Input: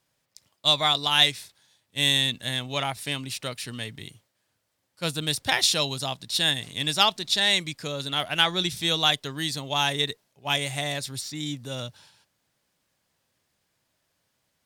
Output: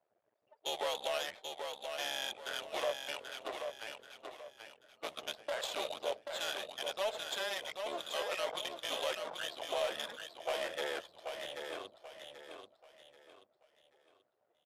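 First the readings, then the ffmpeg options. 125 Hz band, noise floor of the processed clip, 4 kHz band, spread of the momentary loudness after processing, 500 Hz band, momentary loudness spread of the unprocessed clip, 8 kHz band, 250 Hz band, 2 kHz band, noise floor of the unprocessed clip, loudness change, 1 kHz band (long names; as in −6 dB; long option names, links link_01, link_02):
below −30 dB, −79 dBFS, −17.0 dB, 14 LU, −4.0 dB, 13 LU, −15.0 dB, −20.5 dB, −13.0 dB, −75 dBFS, −14.5 dB, −11.5 dB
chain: -filter_complex "[0:a]aeval=exprs='val(0)+0.5*0.0596*sgn(val(0))':channel_layout=same,agate=range=-9dB:threshold=-27dB:ratio=16:detection=peak,afftdn=noise_reduction=27:noise_floor=-32,equalizer=frequency=12000:width_type=o:width=1.1:gain=-2.5,afreqshift=-220,acrossover=split=3900[link_01][link_02];[link_02]acompressor=threshold=-45dB:ratio=6[link_03];[link_01][link_03]amix=inputs=2:normalize=0,aeval=exprs='max(val(0),0)':channel_layout=same,highpass=frequency=600:width_type=q:width=4.3,alimiter=limit=-16.5dB:level=0:latency=1:release=88,adynamicsmooth=sensitivity=7.5:basefreq=1400,asplit=2[link_04][link_05];[link_05]aecho=0:1:784|1568|2352|3136:0.501|0.17|0.0579|0.0197[link_06];[link_04][link_06]amix=inputs=2:normalize=0,volume=-8.5dB" -ar 32000 -c:a libmp3lame -b:a 80k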